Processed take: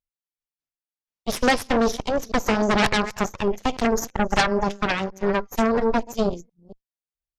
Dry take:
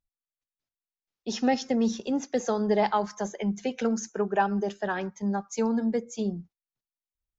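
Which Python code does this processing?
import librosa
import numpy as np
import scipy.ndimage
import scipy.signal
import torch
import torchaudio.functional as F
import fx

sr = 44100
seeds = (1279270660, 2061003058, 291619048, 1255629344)

y = fx.reverse_delay(x, sr, ms=232, wet_db=-13.0)
y = fx.cheby_harmonics(y, sr, harmonics=(3, 8), levels_db=(-12, -12), full_scale_db=-11.0)
y = y * librosa.db_to_amplitude(6.0)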